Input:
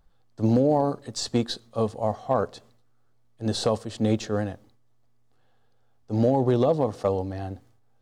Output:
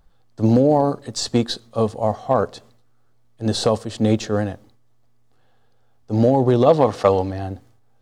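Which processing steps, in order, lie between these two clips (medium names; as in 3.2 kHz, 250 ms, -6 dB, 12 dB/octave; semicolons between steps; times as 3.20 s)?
6.66–7.31 s: peaking EQ 2.1 kHz +9.5 dB 3 oct; trim +5.5 dB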